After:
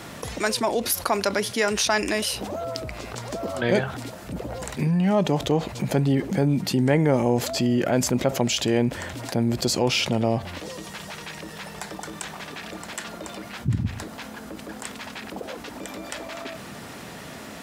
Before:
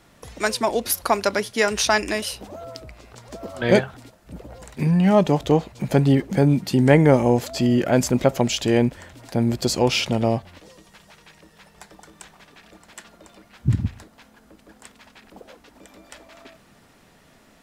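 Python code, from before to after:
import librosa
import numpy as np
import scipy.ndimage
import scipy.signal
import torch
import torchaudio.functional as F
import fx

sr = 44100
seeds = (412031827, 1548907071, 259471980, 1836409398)

y = scipy.signal.sosfilt(scipy.signal.butter(2, 79.0, 'highpass', fs=sr, output='sos'), x)
y = fx.env_flatten(y, sr, amount_pct=50)
y = y * 10.0 ** (-6.5 / 20.0)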